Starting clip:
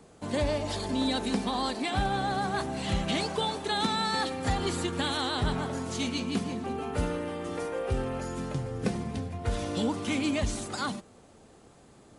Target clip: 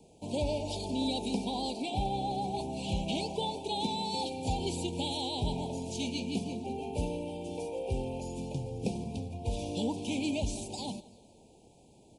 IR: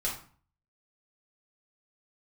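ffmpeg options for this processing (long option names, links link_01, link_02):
-filter_complex "[0:a]asuperstop=centerf=1500:order=20:qfactor=1.1,aecho=1:1:173|346|519|692:0.0841|0.0421|0.021|0.0105,asplit=3[link_01][link_02][link_03];[link_01]afade=type=out:start_time=1.81:duration=0.02[link_04];[link_02]adynamicequalizer=threshold=0.00794:dfrequency=3100:dqfactor=0.7:tfrequency=3100:tqfactor=0.7:attack=5:release=100:ratio=0.375:range=2:mode=cutabove:tftype=highshelf,afade=type=in:start_time=1.81:duration=0.02,afade=type=out:start_time=4.1:duration=0.02[link_05];[link_03]afade=type=in:start_time=4.1:duration=0.02[link_06];[link_04][link_05][link_06]amix=inputs=3:normalize=0,volume=-3.5dB"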